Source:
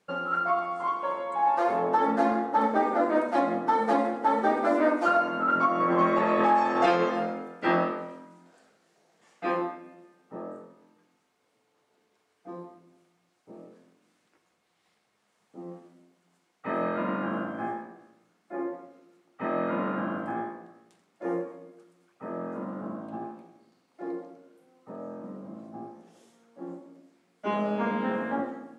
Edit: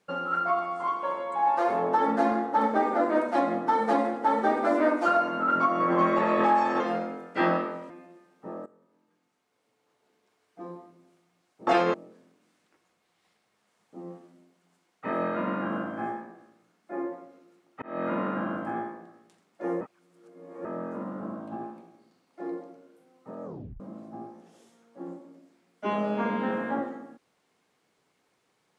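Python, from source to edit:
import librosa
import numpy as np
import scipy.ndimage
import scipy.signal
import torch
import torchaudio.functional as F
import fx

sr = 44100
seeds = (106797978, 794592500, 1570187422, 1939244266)

y = fx.edit(x, sr, fx.move(start_s=6.8, length_s=0.27, to_s=13.55),
    fx.cut(start_s=8.17, length_s=1.61),
    fx.fade_in_from(start_s=10.54, length_s=2.01, curve='qsin', floor_db=-16.5),
    fx.fade_in_span(start_s=19.43, length_s=0.25),
    fx.reverse_span(start_s=21.42, length_s=0.84),
    fx.tape_stop(start_s=25.05, length_s=0.36), tone=tone)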